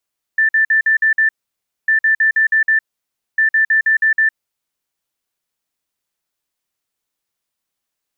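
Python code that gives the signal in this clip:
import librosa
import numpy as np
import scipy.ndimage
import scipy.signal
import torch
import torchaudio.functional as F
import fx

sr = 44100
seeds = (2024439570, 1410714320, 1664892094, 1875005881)

y = fx.beep_pattern(sr, wave='sine', hz=1770.0, on_s=0.11, off_s=0.05, beeps=6, pause_s=0.59, groups=3, level_db=-10.0)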